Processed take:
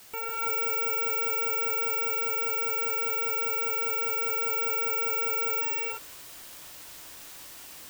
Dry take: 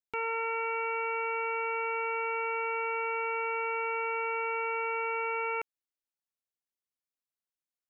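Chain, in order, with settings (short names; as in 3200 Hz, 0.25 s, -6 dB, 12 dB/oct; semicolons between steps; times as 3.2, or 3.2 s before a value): 1.85–4.22 low shelf 67 Hz -10.5 dB; limiter -38.5 dBFS, peak gain reduction 14 dB; requantised 10-bit, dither triangular; careless resampling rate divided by 2×, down filtered, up zero stuff; non-linear reverb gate 0.38 s rising, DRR -5 dB; gain +9 dB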